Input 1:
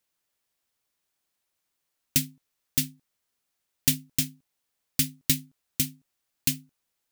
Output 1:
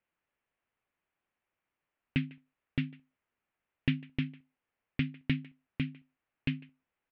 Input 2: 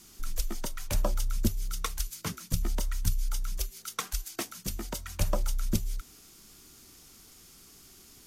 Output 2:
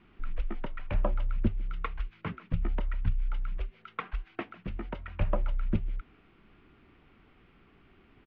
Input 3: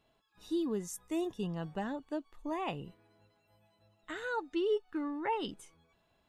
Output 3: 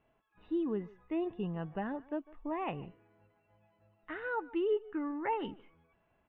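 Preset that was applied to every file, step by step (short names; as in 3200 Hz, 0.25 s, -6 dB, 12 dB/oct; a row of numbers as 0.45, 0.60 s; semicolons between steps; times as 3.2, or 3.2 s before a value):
steep low-pass 2700 Hz 36 dB/oct; speakerphone echo 0.15 s, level -20 dB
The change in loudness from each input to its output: -9.0, -1.5, 0.0 LU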